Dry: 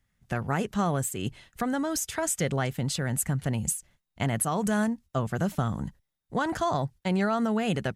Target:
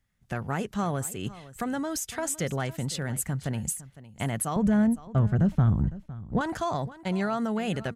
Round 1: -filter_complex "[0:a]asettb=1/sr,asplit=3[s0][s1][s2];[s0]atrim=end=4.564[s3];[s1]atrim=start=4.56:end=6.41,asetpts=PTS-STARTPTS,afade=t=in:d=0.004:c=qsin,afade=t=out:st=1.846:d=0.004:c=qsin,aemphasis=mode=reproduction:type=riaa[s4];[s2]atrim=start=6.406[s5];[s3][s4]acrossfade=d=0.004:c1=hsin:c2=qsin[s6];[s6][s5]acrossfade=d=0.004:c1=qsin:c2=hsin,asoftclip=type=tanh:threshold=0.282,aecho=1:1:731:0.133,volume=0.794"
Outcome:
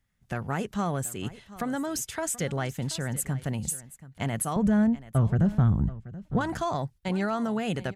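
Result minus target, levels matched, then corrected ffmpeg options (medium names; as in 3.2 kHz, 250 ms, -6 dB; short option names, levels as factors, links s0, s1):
echo 223 ms late
-filter_complex "[0:a]asettb=1/sr,asplit=3[s0][s1][s2];[s0]atrim=end=4.564[s3];[s1]atrim=start=4.56:end=6.41,asetpts=PTS-STARTPTS,afade=t=in:d=0.004:c=qsin,afade=t=out:st=1.846:d=0.004:c=qsin,aemphasis=mode=reproduction:type=riaa[s4];[s2]atrim=start=6.406[s5];[s3][s4]acrossfade=d=0.004:c1=hsin:c2=qsin[s6];[s6][s5]acrossfade=d=0.004:c1=qsin:c2=hsin,asoftclip=type=tanh:threshold=0.282,aecho=1:1:508:0.133,volume=0.794"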